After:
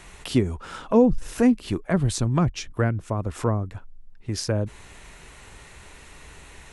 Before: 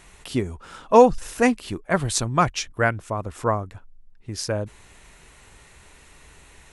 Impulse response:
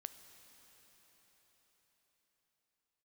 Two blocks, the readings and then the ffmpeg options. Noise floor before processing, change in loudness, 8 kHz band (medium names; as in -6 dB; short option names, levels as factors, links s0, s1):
-51 dBFS, -1.5 dB, -5.0 dB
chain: -filter_complex "[0:a]highshelf=f=8600:g=-5,acrossover=split=370[s0][s1];[s1]acompressor=threshold=0.0251:ratio=10[s2];[s0][s2]amix=inputs=2:normalize=0,volume=1.68"